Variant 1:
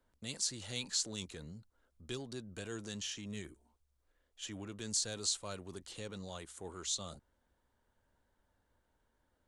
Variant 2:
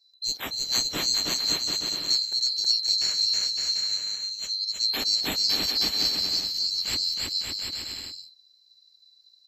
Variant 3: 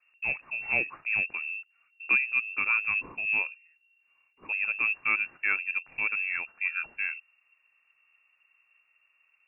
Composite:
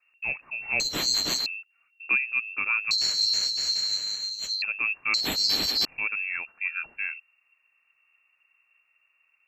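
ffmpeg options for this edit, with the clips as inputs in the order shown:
-filter_complex "[1:a]asplit=3[a][b][c];[2:a]asplit=4[d][e][f][g];[d]atrim=end=0.802[h];[a]atrim=start=0.798:end=1.462[i];[e]atrim=start=1.458:end=2.912[j];[b]atrim=start=2.908:end=4.622[k];[f]atrim=start=4.618:end=5.142[l];[c]atrim=start=5.138:end=5.852[m];[g]atrim=start=5.848[n];[h][i]acrossfade=d=0.004:c1=hsin:c2=hsin[o];[o][j]acrossfade=d=0.004:c1=hsin:c2=hsin[p];[p][k]acrossfade=d=0.004:c1=hsin:c2=hsin[q];[q][l]acrossfade=d=0.004:c1=hsin:c2=hsin[r];[r][m]acrossfade=d=0.004:c1=hsin:c2=hsin[s];[s][n]acrossfade=d=0.004:c1=hsin:c2=hsin"

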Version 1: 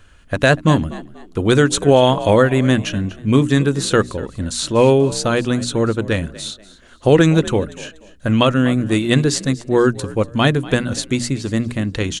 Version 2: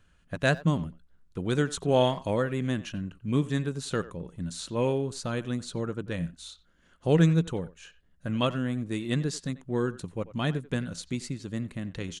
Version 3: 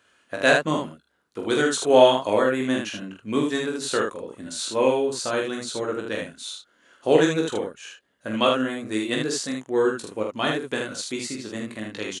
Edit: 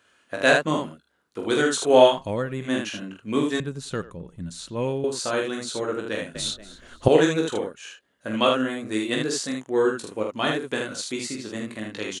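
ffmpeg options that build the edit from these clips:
-filter_complex "[1:a]asplit=2[a][b];[2:a]asplit=4[c][d][e][f];[c]atrim=end=2.22[g];[a]atrim=start=2.06:end=2.74[h];[d]atrim=start=2.58:end=3.602[i];[b]atrim=start=3.598:end=5.042[j];[e]atrim=start=5.038:end=6.352[k];[0:a]atrim=start=6.348:end=7.082[l];[f]atrim=start=7.078[m];[g][h]acrossfade=d=0.16:c1=tri:c2=tri[n];[n][i]acrossfade=d=0.16:c1=tri:c2=tri[o];[o][j]acrossfade=d=0.004:c1=hsin:c2=hsin[p];[p][k]acrossfade=d=0.004:c1=hsin:c2=hsin[q];[q][l]acrossfade=d=0.004:c1=hsin:c2=hsin[r];[r][m]acrossfade=d=0.004:c1=hsin:c2=hsin"

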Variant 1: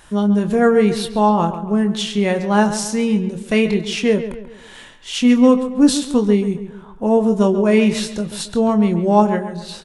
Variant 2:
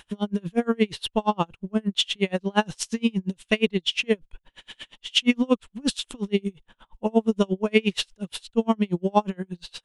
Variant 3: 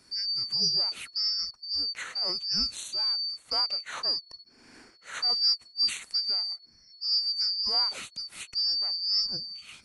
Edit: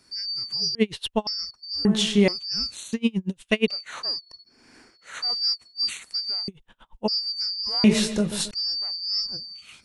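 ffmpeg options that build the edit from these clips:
-filter_complex "[1:a]asplit=3[a][b][c];[0:a]asplit=2[d][e];[2:a]asplit=6[f][g][h][i][j][k];[f]atrim=end=0.752[l];[a]atrim=start=0.748:end=1.272[m];[g]atrim=start=1.268:end=1.852[n];[d]atrim=start=1.848:end=2.282[o];[h]atrim=start=2.278:end=2.932[p];[b]atrim=start=2.928:end=3.682[q];[i]atrim=start=3.678:end=6.482[r];[c]atrim=start=6.478:end=7.082[s];[j]atrim=start=7.078:end=7.842[t];[e]atrim=start=7.838:end=8.512[u];[k]atrim=start=8.508[v];[l][m]acrossfade=d=0.004:c1=hsin:c2=hsin[w];[w][n]acrossfade=d=0.004:c1=hsin:c2=hsin[x];[x][o]acrossfade=d=0.004:c1=hsin:c2=hsin[y];[y][p]acrossfade=d=0.004:c1=hsin:c2=hsin[z];[z][q]acrossfade=d=0.004:c1=hsin:c2=hsin[aa];[aa][r]acrossfade=d=0.004:c1=hsin:c2=hsin[ab];[ab][s]acrossfade=d=0.004:c1=hsin:c2=hsin[ac];[ac][t]acrossfade=d=0.004:c1=hsin:c2=hsin[ad];[ad][u]acrossfade=d=0.004:c1=hsin:c2=hsin[ae];[ae][v]acrossfade=d=0.004:c1=hsin:c2=hsin"

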